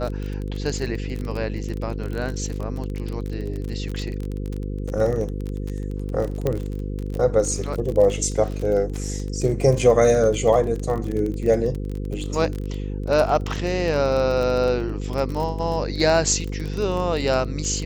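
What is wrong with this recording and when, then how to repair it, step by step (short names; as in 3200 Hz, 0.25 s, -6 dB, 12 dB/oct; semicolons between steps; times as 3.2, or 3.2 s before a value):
buzz 50 Hz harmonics 10 -28 dBFS
crackle 28/s -26 dBFS
6.47 pop -11 dBFS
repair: de-click; de-hum 50 Hz, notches 10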